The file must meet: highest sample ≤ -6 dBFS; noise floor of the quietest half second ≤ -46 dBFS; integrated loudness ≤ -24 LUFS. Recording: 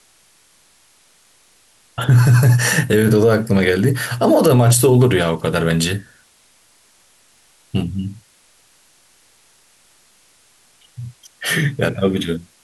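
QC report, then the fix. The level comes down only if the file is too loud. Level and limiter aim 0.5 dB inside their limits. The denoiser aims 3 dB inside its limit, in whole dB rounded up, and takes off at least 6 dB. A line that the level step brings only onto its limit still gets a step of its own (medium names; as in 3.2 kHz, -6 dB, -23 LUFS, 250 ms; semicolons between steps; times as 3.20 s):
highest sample -4.5 dBFS: fail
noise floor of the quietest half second -54 dBFS: pass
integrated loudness -16.0 LUFS: fail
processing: trim -8.5 dB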